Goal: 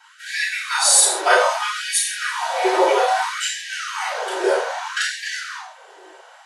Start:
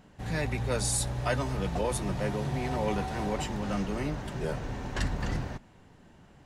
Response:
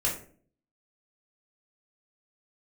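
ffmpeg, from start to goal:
-filter_complex "[0:a]asettb=1/sr,asplit=3[link_01][link_02][link_03];[link_01]atrim=end=1.594[link_04];[link_02]atrim=start=1.59:end=2.23,asetpts=PTS-STARTPTS,afade=type=in:duration=0.004:curve=qsin,afade=type=out:start_time=0.636:duration=0.004:curve=qsin,aecho=1:1:4.8:0.79,atrim=end_sample=28224[link_05];[link_03]atrim=start=2.226[link_06];[link_04][link_05]acrossfade=duration=0.004:curve1=hsin:curve2=qsin[link_07];[link_07][link_06]acrossfade=duration=0.004:curve1=qsin:curve2=hsin[link_08];[1:a]atrim=start_sample=2205,afade=type=out:start_time=0.15:duration=0.01,atrim=end_sample=7056,asetrate=23814,aresample=44100[link_09];[link_08][link_09]afir=irnorm=-1:irlink=0,afftfilt=real='re*gte(b*sr/1024,330*pow(1600/330,0.5+0.5*sin(2*PI*0.62*pts/sr)))':imag='im*gte(b*sr/1024,330*pow(1600/330,0.5+0.5*sin(2*PI*0.62*pts/sr)))':win_size=1024:overlap=0.75,volume=5dB"

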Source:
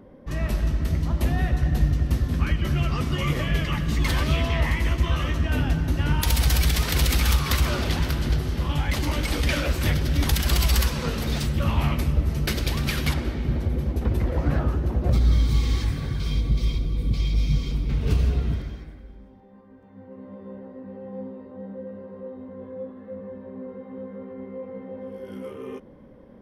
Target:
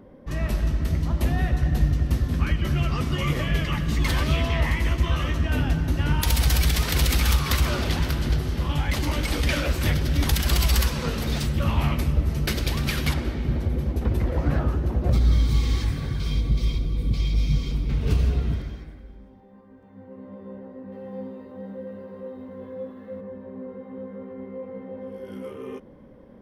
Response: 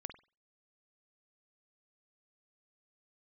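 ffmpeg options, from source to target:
-filter_complex "[0:a]asettb=1/sr,asplit=3[link_01][link_02][link_03];[link_01]atrim=end=20.924[link_04];[link_02]atrim=start=20.92:end=23.21,asetpts=PTS-STARTPTS,afade=type=in:duration=0.004:curve=qsin,afade=type=out:start_time=2.286:duration=0.004:curve=qsin,highshelf=frequency=2400:gain=10.5[link_05];[link_03]atrim=start=23.206[link_06];[link_04][link_05]acrossfade=duration=0.004:curve1=hsin:curve2=qsin[link_07];[link_07][link_06]acrossfade=duration=0.004:curve1=qsin:curve2=hsin"

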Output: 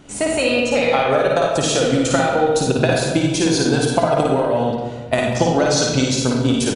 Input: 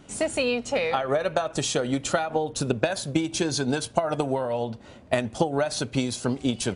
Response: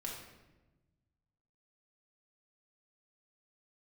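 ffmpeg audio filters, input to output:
-filter_complex "[0:a]asettb=1/sr,asplit=3[link_01][link_02][link_03];[link_01]atrim=end=5.364[link_04];[link_02]atrim=start=5.36:end=6.18,asetpts=PTS-STARTPTS,afade=type=in:duration=0.004:curve=qsin,afade=type=out:start_time=0.816:duration=0.004:curve=qsin,lowpass=frequency=6400:width_type=q:width=2.5[link_05];[link_03]atrim=start=6.176[link_06];[link_04][link_05]acrossfade=duration=0.004:curve1=hsin:curve2=qsin[link_07];[link_07][link_06]acrossfade=duration=0.004:curve1=qsin:curve2=hsin,asplit=2[link_08][link_09];[link_09]adelay=190,highpass=300,lowpass=3400,asoftclip=type=hard:threshold=-15.5dB,volume=-9dB[link_10];[link_08][link_10]amix=inputs=2:normalize=0,asplit=2[link_11][link_12];[1:a]atrim=start_sample=2205,adelay=54[link_13];[link_12][link_13]afir=irnorm=-1:irlink=0,volume=1.5dB[link_14];[link_11][link_14]amix=inputs=2:normalize=0,volume=4.5dB"

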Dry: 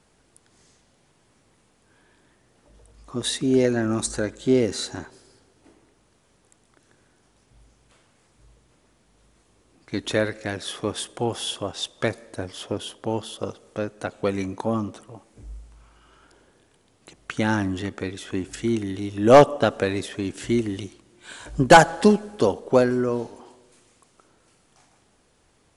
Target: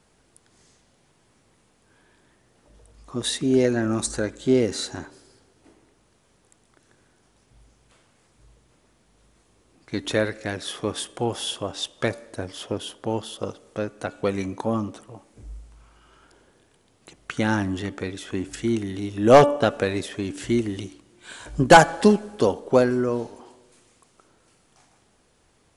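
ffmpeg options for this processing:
ffmpeg -i in.wav -af "bandreject=frequency=289.6:width_type=h:width=4,bandreject=frequency=579.2:width_type=h:width=4,bandreject=frequency=868.8:width_type=h:width=4,bandreject=frequency=1158.4:width_type=h:width=4,bandreject=frequency=1448:width_type=h:width=4,bandreject=frequency=1737.6:width_type=h:width=4,bandreject=frequency=2027.2:width_type=h:width=4,bandreject=frequency=2316.8:width_type=h:width=4,bandreject=frequency=2606.4:width_type=h:width=4,bandreject=frequency=2896:width_type=h:width=4,bandreject=frequency=3185.6:width_type=h:width=4" out.wav

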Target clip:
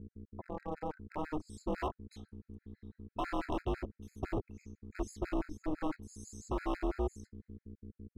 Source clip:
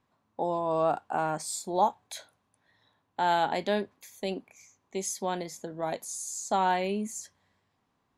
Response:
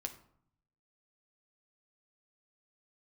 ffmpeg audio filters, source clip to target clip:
-filter_complex "[0:a]aemphasis=mode=reproduction:type=50kf,afwtdn=0.01,asubboost=boost=9:cutoff=120,acrossover=split=360[link_01][link_02];[link_02]acompressor=threshold=-50dB:ratio=2[link_03];[link_01][link_03]amix=inputs=2:normalize=0,alimiter=level_in=4.5dB:limit=-24dB:level=0:latency=1:release=14,volume=-4.5dB,dynaudnorm=framelen=410:gausssize=7:maxgain=13dB,aeval=exprs='val(0)+0.00562*(sin(2*PI*60*n/s)+sin(2*PI*2*60*n/s)/2+sin(2*PI*3*60*n/s)/3+sin(2*PI*4*60*n/s)/4+sin(2*PI*5*60*n/s)/5)':channel_layout=same,aeval=exprs='val(0)*sin(2*PI*150*n/s)':channel_layout=same,asoftclip=type=hard:threshold=-30dB,afftfilt=real='re*gt(sin(2*PI*6*pts/sr)*(1-2*mod(floor(b*sr/1024/1300),2)),0)':imag='im*gt(sin(2*PI*6*pts/sr)*(1-2*mod(floor(b*sr/1024/1300),2)),0)':win_size=1024:overlap=0.75,volume=1dB"

